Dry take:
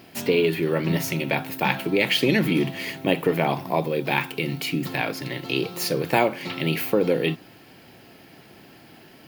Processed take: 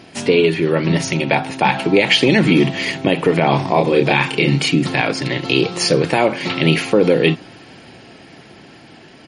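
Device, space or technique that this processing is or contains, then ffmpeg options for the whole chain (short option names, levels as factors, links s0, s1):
low-bitrate web radio: -filter_complex "[0:a]asplit=3[s0][s1][s2];[s0]afade=t=out:st=1.14:d=0.02[s3];[s1]adynamicequalizer=threshold=0.0112:dfrequency=810:dqfactor=2.9:tfrequency=810:tqfactor=2.9:attack=5:release=100:ratio=0.375:range=3:mode=boostabove:tftype=bell,afade=t=in:st=1.14:d=0.02,afade=t=out:st=2.4:d=0.02[s4];[s2]afade=t=in:st=2.4:d=0.02[s5];[s3][s4][s5]amix=inputs=3:normalize=0,asplit=3[s6][s7][s8];[s6]afade=t=out:st=3.52:d=0.02[s9];[s7]asplit=2[s10][s11];[s11]adelay=29,volume=0.708[s12];[s10][s12]amix=inputs=2:normalize=0,afade=t=in:st=3.52:d=0.02,afade=t=out:st=4.68:d=0.02[s13];[s8]afade=t=in:st=4.68:d=0.02[s14];[s9][s13][s14]amix=inputs=3:normalize=0,dynaudnorm=f=430:g=9:m=2.37,alimiter=limit=0.355:level=0:latency=1:release=98,volume=2.24" -ar 44100 -c:a libmp3lame -b:a 40k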